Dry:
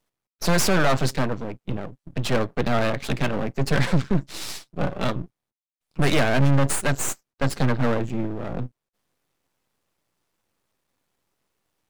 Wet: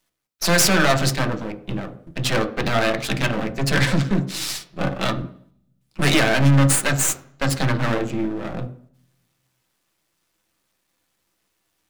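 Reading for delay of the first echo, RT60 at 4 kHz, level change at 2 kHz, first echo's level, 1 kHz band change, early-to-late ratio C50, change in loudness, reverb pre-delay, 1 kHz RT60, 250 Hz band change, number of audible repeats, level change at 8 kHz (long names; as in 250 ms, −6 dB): no echo audible, 0.55 s, +5.5 dB, no echo audible, +2.5 dB, 12.5 dB, +4.0 dB, 3 ms, 0.55 s, +2.5 dB, no echo audible, +7.5 dB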